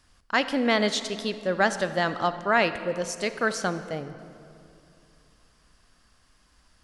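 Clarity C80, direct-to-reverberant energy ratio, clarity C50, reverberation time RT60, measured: 12.5 dB, 11.0 dB, 11.5 dB, 2.7 s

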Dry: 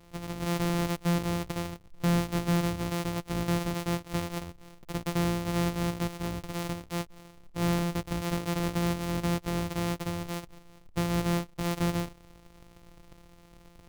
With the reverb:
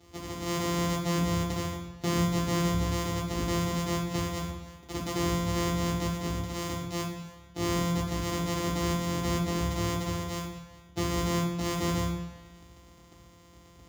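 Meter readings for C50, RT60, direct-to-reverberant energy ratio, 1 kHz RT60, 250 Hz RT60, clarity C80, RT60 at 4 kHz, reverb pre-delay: 4.5 dB, 1.0 s, -4.0 dB, 1.1 s, 1.0 s, 6.5 dB, 1.1 s, 3 ms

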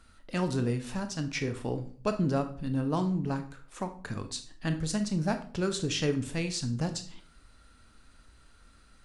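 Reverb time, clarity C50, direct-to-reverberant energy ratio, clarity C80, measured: 0.45 s, 12.0 dB, 7.5 dB, 16.5 dB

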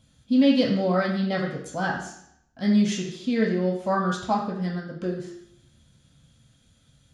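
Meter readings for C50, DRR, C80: 5.0 dB, -2.0 dB, 8.0 dB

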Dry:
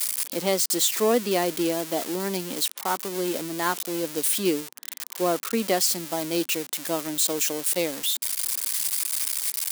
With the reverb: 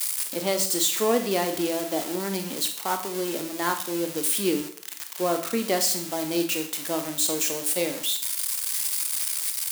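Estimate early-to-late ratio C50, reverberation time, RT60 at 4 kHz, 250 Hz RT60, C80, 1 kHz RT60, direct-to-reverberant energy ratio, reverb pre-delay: 9.0 dB, 0.55 s, 0.55 s, 0.55 s, 12.5 dB, 0.55 s, 5.5 dB, 21 ms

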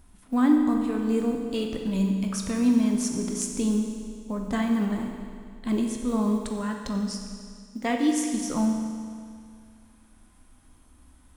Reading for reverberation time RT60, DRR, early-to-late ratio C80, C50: 2.2 s, 2.0 dB, 5.0 dB, 3.5 dB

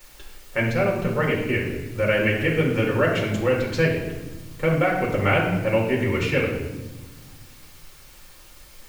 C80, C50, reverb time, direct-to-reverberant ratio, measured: 6.5 dB, 4.0 dB, 1.2 s, -4.0 dB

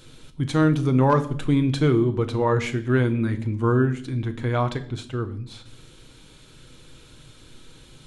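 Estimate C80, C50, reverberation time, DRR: 18.5 dB, 15.0 dB, 0.60 s, 7.5 dB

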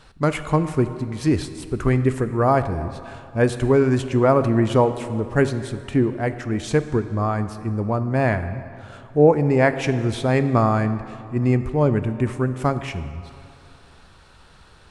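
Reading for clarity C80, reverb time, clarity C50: 12.0 dB, 2.5 s, 11.5 dB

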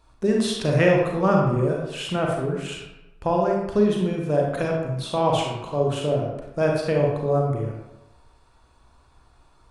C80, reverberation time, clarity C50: 4.5 dB, 1.0 s, 1.5 dB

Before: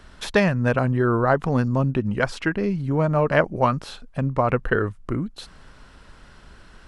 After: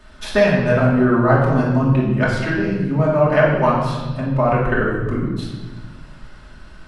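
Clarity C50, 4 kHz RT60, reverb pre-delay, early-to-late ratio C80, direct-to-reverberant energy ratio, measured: 1.0 dB, 1.0 s, 3 ms, 4.0 dB, -7.0 dB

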